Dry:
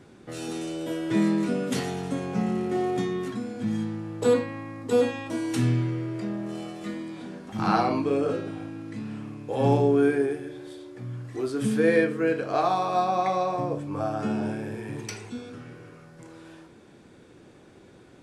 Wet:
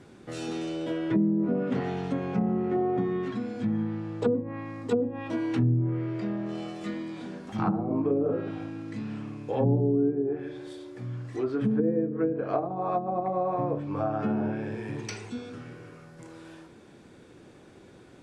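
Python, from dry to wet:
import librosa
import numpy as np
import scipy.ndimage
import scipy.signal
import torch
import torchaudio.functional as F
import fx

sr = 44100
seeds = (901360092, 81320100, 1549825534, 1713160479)

y = fx.env_lowpass_down(x, sr, base_hz=330.0, full_db=-19.0)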